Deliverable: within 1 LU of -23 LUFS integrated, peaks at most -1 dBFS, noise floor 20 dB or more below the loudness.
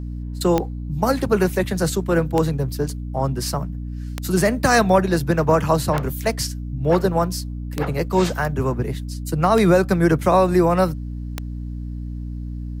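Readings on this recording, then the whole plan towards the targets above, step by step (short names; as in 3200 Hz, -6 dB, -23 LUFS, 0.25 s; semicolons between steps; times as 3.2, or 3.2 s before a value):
clicks 7; hum 60 Hz; harmonics up to 300 Hz; hum level -26 dBFS; loudness -20.5 LUFS; peak -3.5 dBFS; loudness target -23.0 LUFS
-> de-click; notches 60/120/180/240/300 Hz; gain -2.5 dB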